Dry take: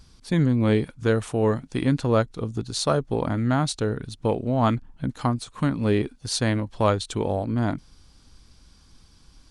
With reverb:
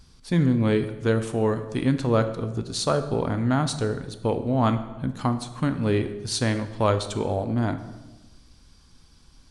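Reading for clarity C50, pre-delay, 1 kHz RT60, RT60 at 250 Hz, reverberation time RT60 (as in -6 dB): 11.5 dB, 6 ms, 1.1 s, 1.4 s, 1.2 s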